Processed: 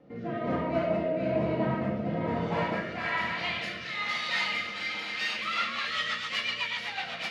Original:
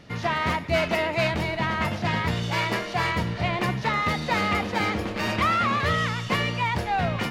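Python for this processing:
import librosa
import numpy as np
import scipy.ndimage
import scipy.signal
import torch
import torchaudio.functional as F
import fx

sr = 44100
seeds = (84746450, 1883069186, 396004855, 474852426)

y = fx.filter_sweep_bandpass(x, sr, from_hz=420.0, to_hz=3500.0, start_s=2.28, end_s=3.47, q=1.2)
y = fx.echo_alternate(y, sr, ms=131, hz=1000.0, feedback_pct=86, wet_db=-10.5)
y = fx.room_shoebox(y, sr, seeds[0], volume_m3=410.0, walls='mixed', distance_m=2.1)
y = fx.rotary_switch(y, sr, hz=1.1, then_hz=8.0, switch_at_s=5.19)
y = F.gain(torch.from_numpy(y), -2.0).numpy()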